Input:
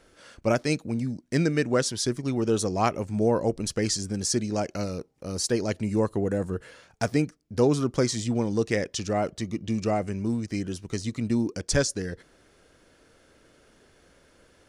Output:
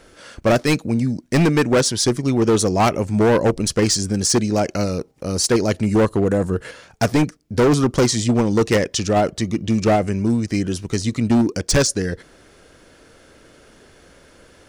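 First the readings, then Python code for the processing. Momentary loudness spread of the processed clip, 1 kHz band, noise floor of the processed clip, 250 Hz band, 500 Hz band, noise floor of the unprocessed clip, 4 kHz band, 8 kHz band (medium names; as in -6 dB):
7 LU, +9.0 dB, -51 dBFS, +8.5 dB, +8.0 dB, -61 dBFS, +9.0 dB, +8.5 dB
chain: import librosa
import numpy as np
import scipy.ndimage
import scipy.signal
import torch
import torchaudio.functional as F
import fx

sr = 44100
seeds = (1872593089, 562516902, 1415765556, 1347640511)

p1 = fx.level_steps(x, sr, step_db=24)
p2 = x + F.gain(torch.from_numpy(p1), -2.5).numpy()
p3 = np.clip(p2, -10.0 ** (-20.0 / 20.0), 10.0 ** (-20.0 / 20.0))
y = F.gain(torch.from_numpy(p3), 8.5).numpy()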